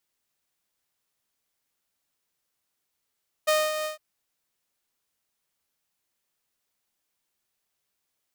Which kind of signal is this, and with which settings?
ADSR saw 617 Hz, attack 16 ms, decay 0.234 s, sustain -9 dB, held 0.38 s, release 0.128 s -16 dBFS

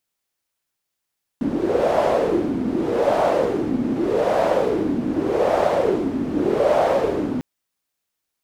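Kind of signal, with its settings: wind-like swept noise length 6.00 s, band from 260 Hz, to 640 Hz, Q 4.6, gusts 5, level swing 5.5 dB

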